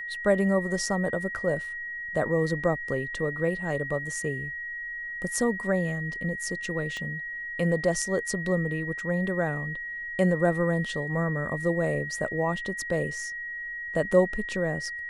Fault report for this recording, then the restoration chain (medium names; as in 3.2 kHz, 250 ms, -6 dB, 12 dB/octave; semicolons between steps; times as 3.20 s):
whine 1.9 kHz -33 dBFS
6.97 s: pop -24 dBFS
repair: de-click; band-stop 1.9 kHz, Q 30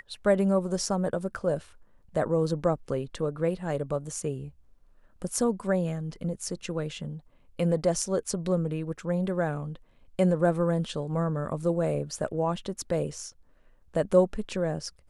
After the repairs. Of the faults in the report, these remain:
6.97 s: pop